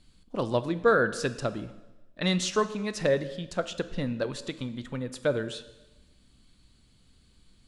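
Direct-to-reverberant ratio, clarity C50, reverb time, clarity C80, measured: 12.0 dB, 14.0 dB, 1.1 s, 15.5 dB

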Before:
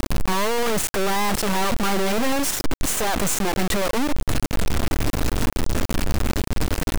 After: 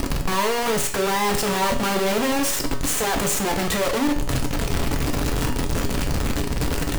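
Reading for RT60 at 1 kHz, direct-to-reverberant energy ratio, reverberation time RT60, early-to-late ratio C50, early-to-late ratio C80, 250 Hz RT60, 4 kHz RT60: 0.50 s, 2.5 dB, 0.50 s, 10.0 dB, 14.0 dB, 0.50 s, 0.50 s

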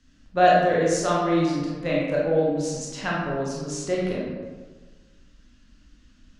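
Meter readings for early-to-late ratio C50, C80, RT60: -1.0 dB, 2.5 dB, 1.4 s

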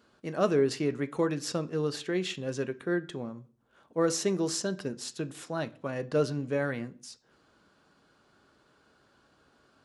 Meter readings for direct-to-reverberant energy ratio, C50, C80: 9.0 dB, 20.5 dB, 24.0 dB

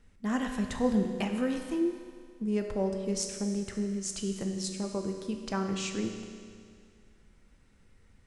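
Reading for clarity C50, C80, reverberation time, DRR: 5.5 dB, 6.5 dB, 2.1 s, 3.5 dB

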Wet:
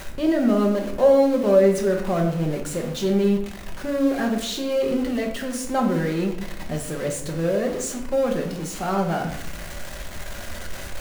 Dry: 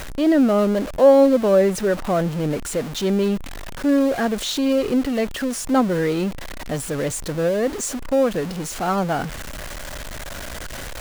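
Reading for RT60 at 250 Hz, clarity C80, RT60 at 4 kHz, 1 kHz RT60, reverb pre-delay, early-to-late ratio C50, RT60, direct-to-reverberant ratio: 0.95 s, 9.5 dB, 0.50 s, 0.70 s, 5 ms, 7.0 dB, 0.75 s, 0.5 dB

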